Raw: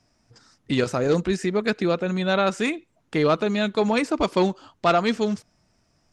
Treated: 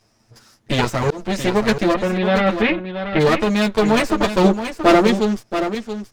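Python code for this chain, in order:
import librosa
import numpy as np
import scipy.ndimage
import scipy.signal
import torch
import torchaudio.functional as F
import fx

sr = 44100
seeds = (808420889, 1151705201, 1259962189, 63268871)

p1 = fx.lower_of_two(x, sr, delay_ms=9.0)
p2 = fx.lowpass(p1, sr, hz=3300.0, slope=24, at=(1.93, 3.19), fade=0.02)
p3 = fx.peak_eq(p2, sr, hz=360.0, db=11.5, octaves=1.2, at=(4.44, 5.07))
p4 = fx.rider(p3, sr, range_db=10, speed_s=0.5)
p5 = p3 + F.gain(torch.from_numpy(p4), -2.0).numpy()
p6 = fx.auto_swell(p5, sr, attack_ms=293.0, at=(0.89, 1.43), fade=0.02)
p7 = p6 + 10.0 ** (-9.0 / 20.0) * np.pad(p6, (int(678 * sr / 1000.0), 0))[:len(p6)]
y = F.gain(torch.from_numpy(p7), 1.0).numpy()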